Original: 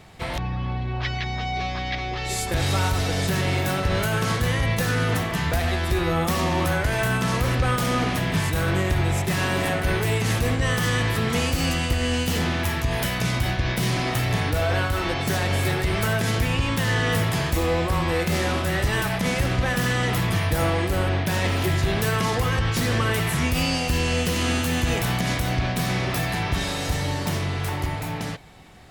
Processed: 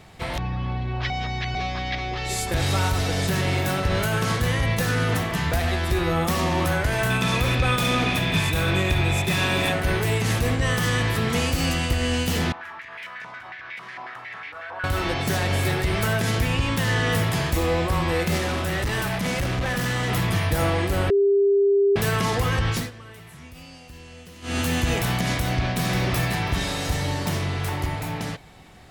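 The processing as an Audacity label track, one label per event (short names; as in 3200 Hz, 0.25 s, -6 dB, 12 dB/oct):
1.100000	1.550000	reverse
7.100000	9.720000	small resonant body resonances 2500/3500 Hz, height 18 dB
12.520000	14.840000	stepped band-pass 11 Hz 950–2200 Hz
18.380000	20.100000	hard clip -21.5 dBFS
21.100000	21.960000	bleep 399 Hz -15 dBFS
22.730000	24.600000	dip -20.5 dB, fades 0.18 s
25.300000	25.810000	echo throw 0.54 s, feedback 25%, level -6.5 dB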